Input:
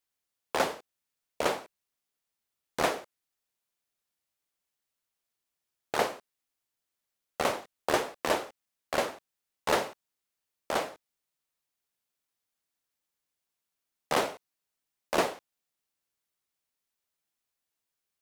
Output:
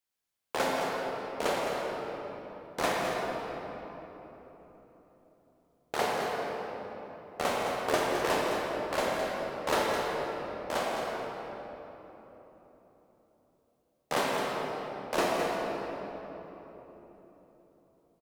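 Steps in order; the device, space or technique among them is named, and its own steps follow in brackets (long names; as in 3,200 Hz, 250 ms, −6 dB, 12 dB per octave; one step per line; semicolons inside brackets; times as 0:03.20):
cave (single-tap delay 212 ms −8.5 dB; convolution reverb RT60 4.0 s, pre-delay 19 ms, DRR −3 dB)
level −3.5 dB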